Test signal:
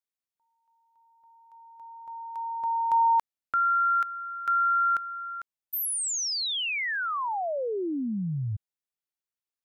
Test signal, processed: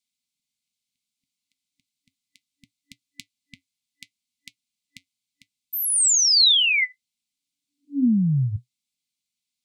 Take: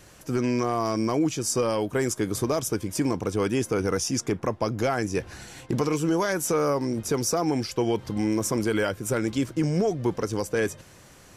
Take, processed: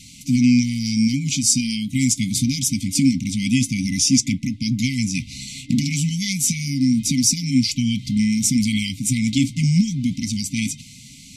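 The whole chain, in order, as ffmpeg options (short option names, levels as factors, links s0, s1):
-af "flanger=delay=3.9:depth=1.7:regen=-76:speed=0.69:shape=triangular,afftfilt=real='re*(1-between(b*sr/4096,290,2000))':imag='im*(1-between(b*sr/4096,290,2000))':win_size=4096:overlap=0.75,equalizer=f=125:t=o:w=1:g=7,equalizer=f=250:t=o:w=1:g=9,equalizer=f=500:t=o:w=1:g=6,equalizer=f=1000:t=o:w=1:g=-3,equalizer=f=2000:t=o:w=1:g=6,equalizer=f=4000:t=o:w=1:g=11,equalizer=f=8000:t=o:w=1:g=9,volume=1.78"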